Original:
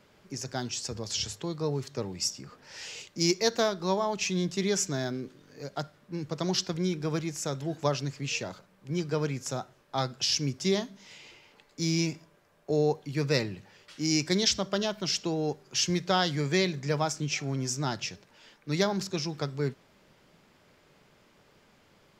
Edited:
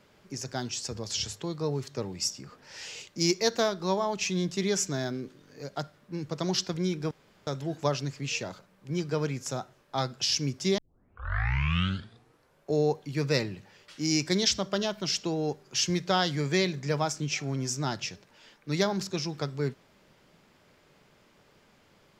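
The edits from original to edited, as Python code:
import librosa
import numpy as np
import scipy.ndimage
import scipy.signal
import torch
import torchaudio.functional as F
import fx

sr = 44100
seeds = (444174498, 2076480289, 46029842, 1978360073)

y = fx.edit(x, sr, fx.room_tone_fill(start_s=7.11, length_s=0.36),
    fx.tape_start(start_s=10.78, length_s=1.92), tone=tone)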